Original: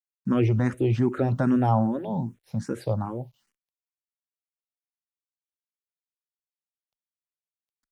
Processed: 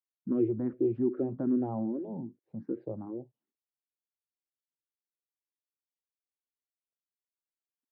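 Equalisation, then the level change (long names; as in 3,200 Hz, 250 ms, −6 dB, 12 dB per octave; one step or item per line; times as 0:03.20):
resonant band-pass 330 Hz, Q 2.9
high-frequency loss of the air 230 metres
0.0 dB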